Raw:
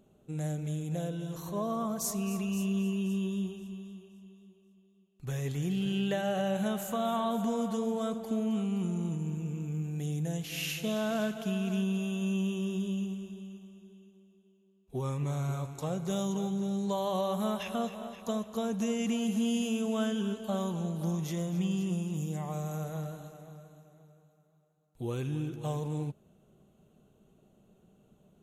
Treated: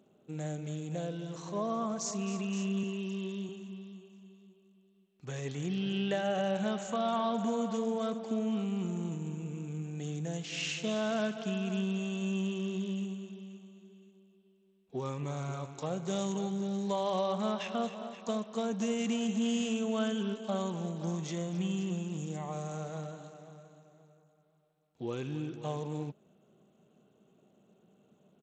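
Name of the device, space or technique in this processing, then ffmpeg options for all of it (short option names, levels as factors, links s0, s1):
Bluetooth headset: -filter_complex "[0:a]asettb=1/sr,asplit=3[s0][s1][s2];[s0]atrim=end=2.834[s3];[s1]atrim=start=2.83:end=3.49,asetpts=PTS-STARTPTS,afade=t=in:d=0.004:c=qsin,afade=t=out:st=0.656:d=0.004:c=qsin,highpass=210[s4];[s2]atrim=start=3.486[s5];[s3][s4]acrossfade=d=0.004:c1=hsin:c2=qsin[s6];[s6][s5]acrossfade=d=0.004:c1=qsin:c2=hsin,highpass=180,aresample=16000,aresample=44100" -ar 32000 -c:a sbc -b:a 64k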